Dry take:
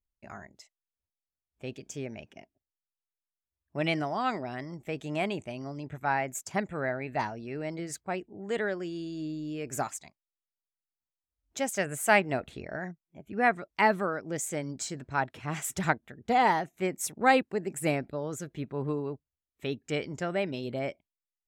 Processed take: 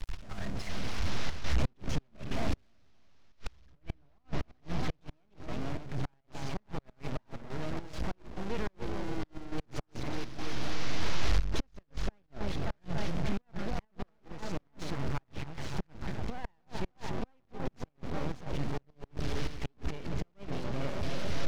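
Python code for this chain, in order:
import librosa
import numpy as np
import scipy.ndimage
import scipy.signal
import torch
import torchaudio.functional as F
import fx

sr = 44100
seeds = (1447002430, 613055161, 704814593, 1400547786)

p1 = fx.delta_mod(x, sr, bps=32000, step_db=-29.0)
p2 = fx.recorder_agc(p1, sr, target_db=-18.5, rise_db_per_s=5.3, max_gain_db=30)
p3 = 10.0 ** (-26.0 / 20.0) * np.tanh(p2 / 10.0 ** (-26.0 / 20.0))
p4 = p2 + (p3 * 10.0 ** (-6.0 / 20.0))
p5 = fx.high_shelf(p4, sr, hz=3900.0, db=-8.0)
p6 = p5 + fx.echo_opening(p5, sr, ms=290, hz=750, octaves=1, feedback_pct=70, wet_db=-6, dry=0)
p7 = fx.step_gate(p6, sr, bpm=104, pattern='x.xxxxxxx.xx.x', floor_db=-12.0, edge_ms=4.5)
p8 = fx.transient(p7, sr, attack_db=-3, sustain_db=2)
p9 = np.maximum(p8, 0.0)
p10 = fx.gate_flip(p9, sr, shuts_db=-17.0, range_db=-39)
p11 = fx.low_shelf(p10, sr, hz=160.0, db=11.0)
y = p11 * 10.0 ** (-7.5 / 20.0)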